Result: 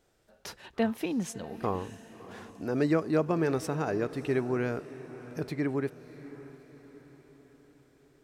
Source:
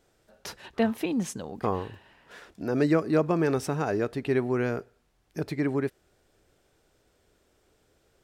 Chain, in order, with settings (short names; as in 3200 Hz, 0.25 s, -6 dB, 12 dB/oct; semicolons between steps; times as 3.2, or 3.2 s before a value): diffused feedback echo 0.644 s, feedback 50%, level -15.5 dB; gain -3 dB